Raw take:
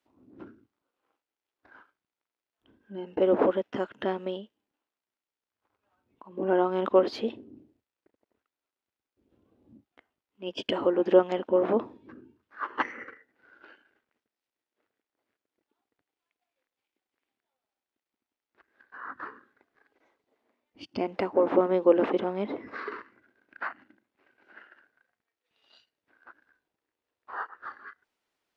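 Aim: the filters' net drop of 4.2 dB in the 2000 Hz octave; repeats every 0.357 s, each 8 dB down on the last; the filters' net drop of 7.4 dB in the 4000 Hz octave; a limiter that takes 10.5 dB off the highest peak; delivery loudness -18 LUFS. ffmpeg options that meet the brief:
-af "equalizer=f=2k:t=o:g=-4,equalizer=f=4k:t=o:g=-9,alimiter=limit=-18.5dB:level=0:latency=1,aecho=1:1:357|714|1071|1428|1785:0.398|0.159|0.0637|0.0255|0.0102,volume=14dB"

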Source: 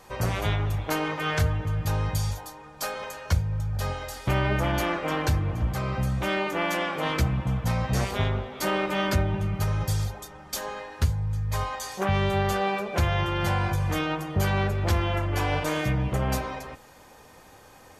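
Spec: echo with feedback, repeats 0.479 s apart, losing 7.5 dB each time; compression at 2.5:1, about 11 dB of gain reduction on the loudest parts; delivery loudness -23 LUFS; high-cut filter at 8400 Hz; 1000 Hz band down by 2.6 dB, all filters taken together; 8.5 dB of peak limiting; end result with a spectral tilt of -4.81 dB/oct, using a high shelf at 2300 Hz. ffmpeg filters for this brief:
-af "lowpass=8.4k,equalizer=f=1k:t=o:g=-4.5,highshelf=f=2.3k:g=5.5,acompressor=threshold=-35dB:ratio=2.5,alimiter=level_in=3.5dB:limit=-24dB:level=0:latency=1,volume=-3.5dB,aecho=1:1:479|958|1437|1916|2395:0.422|0.177|0.0744|0.0312|0.0131,volume=13.5dB"

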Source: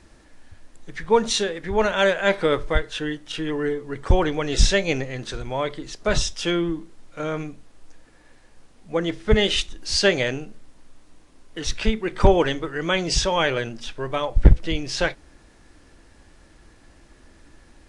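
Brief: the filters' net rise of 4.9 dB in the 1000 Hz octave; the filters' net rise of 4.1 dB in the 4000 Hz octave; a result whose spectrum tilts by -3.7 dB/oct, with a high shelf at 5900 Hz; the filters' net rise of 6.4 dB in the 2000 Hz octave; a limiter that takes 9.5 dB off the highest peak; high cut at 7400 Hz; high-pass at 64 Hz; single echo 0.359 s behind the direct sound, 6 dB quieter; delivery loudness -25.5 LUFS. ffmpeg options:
-af "highpass=64,lowpass=7.4k,equalizer=f=1k:t=o:g=4.5,equalizer=f=2k:t=o:g=6,equalizer=f=4k:t=o:g=5,highshelf=f=5.9k:g=-5,alimiter=limit=-8dB:level=0:latency=1,aecho=1:1:359:0.501,volume=-4dB"

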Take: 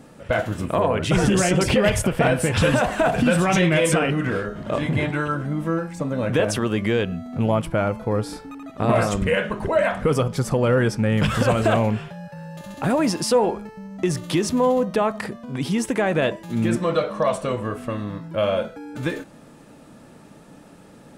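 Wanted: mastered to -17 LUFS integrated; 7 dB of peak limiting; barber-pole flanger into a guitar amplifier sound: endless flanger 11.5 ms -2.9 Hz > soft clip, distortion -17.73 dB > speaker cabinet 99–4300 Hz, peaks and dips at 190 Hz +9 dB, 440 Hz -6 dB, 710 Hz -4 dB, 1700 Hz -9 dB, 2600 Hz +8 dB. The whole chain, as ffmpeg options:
-filter_complex "[0:a]alimiter=limit=-14dB:level=0:latency=1,asplit=2[a][b];[b]adelay=11.5,afreqshift=-2.9[c];[a][c]amix=inputs=2:normalize=1,asoftclip=threshold=-19.5dB,highpass=99,equalizer=f=190:t=q:w=4:g=9,equalizer=f=440:t=q:w=4:g=-6,equalizer=f=710:t=q:w=4:g=-4,equalizer=f=1.7k:t=q:w=4:g=-9,equalizer=f=2.6k:t=q:w=4:g=8,lowpass=f=4.3k:w=0.5412,lowpass=f=4.3k:w=1.3066,volume=11.5dB"

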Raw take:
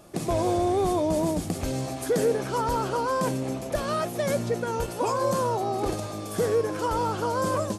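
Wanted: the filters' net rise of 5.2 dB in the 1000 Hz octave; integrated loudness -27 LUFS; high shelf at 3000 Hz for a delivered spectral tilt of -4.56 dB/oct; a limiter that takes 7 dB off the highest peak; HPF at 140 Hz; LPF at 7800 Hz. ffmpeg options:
-af "highpass=140,lowpass=7.8k,equalizer=f=1k:t=o:g=5.5,highshelf=f=3k:g=5,volume=1dB,alimiter=limit=-18dB:level=0:latency=1"

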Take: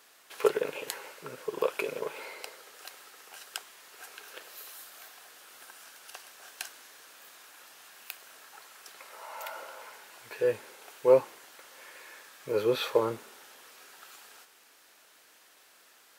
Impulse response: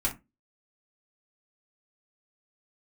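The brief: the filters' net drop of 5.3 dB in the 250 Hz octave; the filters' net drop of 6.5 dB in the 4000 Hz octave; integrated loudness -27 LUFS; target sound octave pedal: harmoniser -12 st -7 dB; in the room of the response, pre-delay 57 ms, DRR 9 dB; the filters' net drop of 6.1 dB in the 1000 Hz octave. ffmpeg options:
-filter_complex "[0:a]equalizer=f=250:t=o:g=-9,equalizer=f=1k:t=o:g=-6.5,equalizer=f=4k:t=o:g=-8,asplit=2[a][b];[1:a]atrim=start_sample=2205,adelay=57[c];[b][c]afir=irnorm=-1:irlink=0,volume=-16dB[d];[a][d]amix=inputs=2:normalize=0,asplit=2[e][f];[f]asetrate=22050,aresample=44100,atempo=2,volume=-7dB[g];[e][g]amix=inputs=2:normalize=0,volume=7.5dB"

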